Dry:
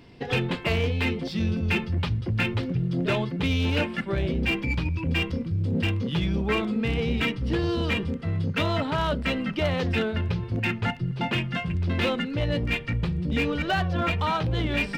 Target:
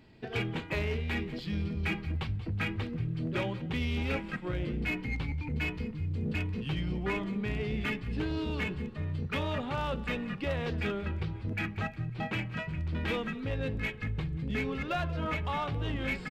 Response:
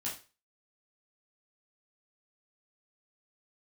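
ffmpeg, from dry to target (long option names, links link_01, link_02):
-filter_complex "[0:a]asplit=2[link_01][link_02];[link_02]asplit=5[link_03][link_04][link_05][link_06][link_07];[link_03]adelay=168,afreqshift=-32,volume=-17.5dB[link_08];[link_04]adelay=336,afreqshift=-64,volume=-23dB[link_09];[link_05]adelay=504,afreqshift=-96,volume=-28.5dB[link_10];[link_06]adelay=672,afreqshift=-128,volume=-34dB[link_11];[link_07]adelay=840,afreqshift=-160,volume=-39.6dB[link_12];[link_08][link_09][link_10][link_11][link_12]amix=inputs=5:normalize=0[link_13];[link_01][link_13]amix=inputs=2:normalize=0,asetrate=40517,aresample=44100,volume=-7.5dB"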